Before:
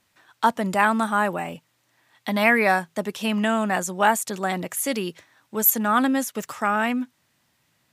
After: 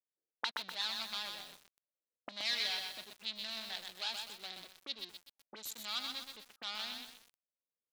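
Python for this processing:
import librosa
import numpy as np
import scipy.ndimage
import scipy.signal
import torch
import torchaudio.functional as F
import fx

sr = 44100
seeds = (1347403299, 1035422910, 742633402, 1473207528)

y = fx.wiener(x, sr, points=41)
y = fx.env_lowpass(y, sr, base_hz=490.0, full_db=-20.0)
y = fx.high_shelf(y, sr, hz=12000.0, db=-10.5)
y = fx.leveller(y, sr, passes=5)
y = fx.auto_wah(y, sr, base_hz=480.0, top_hz=4000.0, q=6.6, full_db=-14.0, direction='up')
y = fx.echo_crushed(y, sr, ms=125, feedback_pct=55, bits=7, wet_db=-3.5)
y = y * 10.0 ** (-8.0 / 20.0)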